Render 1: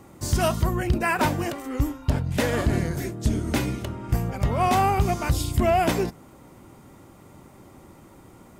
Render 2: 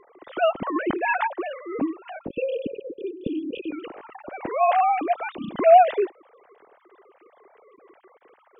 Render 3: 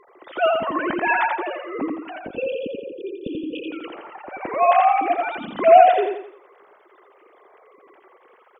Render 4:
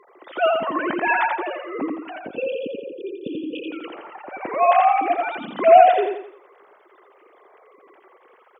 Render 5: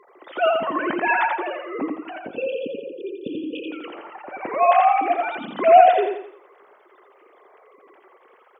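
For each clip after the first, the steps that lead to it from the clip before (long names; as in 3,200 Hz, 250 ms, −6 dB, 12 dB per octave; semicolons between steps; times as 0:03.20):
three sine waves on the formant tracks; time-frequency box erased 0:02.28–0:03.72, 580–2,400 Hz
low-shelf EQ 410 Hz −8.5 dB; on a send: repeating echo 85 ms, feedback 40%, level −3.5 dB; on the sum: level +3.5 dB
high-pass filter 150 Hz 12 dB per octave
hum removal 165.3 Hz, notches 19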